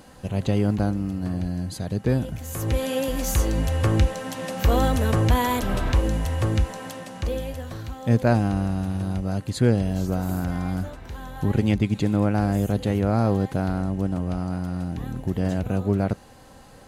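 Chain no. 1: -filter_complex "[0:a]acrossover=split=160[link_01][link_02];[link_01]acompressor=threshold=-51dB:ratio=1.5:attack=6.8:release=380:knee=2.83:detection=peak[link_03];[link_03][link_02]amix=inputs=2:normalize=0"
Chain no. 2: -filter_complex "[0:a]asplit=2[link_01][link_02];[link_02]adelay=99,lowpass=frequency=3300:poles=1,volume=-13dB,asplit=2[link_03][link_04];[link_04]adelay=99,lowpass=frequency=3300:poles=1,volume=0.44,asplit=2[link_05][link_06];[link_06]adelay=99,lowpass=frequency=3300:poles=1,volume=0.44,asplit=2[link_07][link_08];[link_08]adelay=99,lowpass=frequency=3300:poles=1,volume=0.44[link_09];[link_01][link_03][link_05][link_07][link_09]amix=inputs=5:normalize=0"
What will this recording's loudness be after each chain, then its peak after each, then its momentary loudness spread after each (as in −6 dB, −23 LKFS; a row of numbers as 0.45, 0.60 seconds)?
−27.5, −24.5 LKFS; −8.0, −6.0 dBFS; 10, 10 LU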